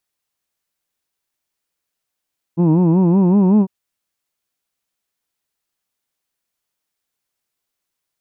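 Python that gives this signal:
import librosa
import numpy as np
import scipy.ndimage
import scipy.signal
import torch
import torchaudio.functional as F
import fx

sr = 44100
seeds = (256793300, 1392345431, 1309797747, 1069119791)

y = fx.formant_vowel(sr, seeds[0], length_s=1.1, hz=162.0, glide_st=4.0, vibrato_hz=5.3, vibrato_st=1.3, f1_hz=270.0, f2_hz=940.0, f3_hz=2600.0)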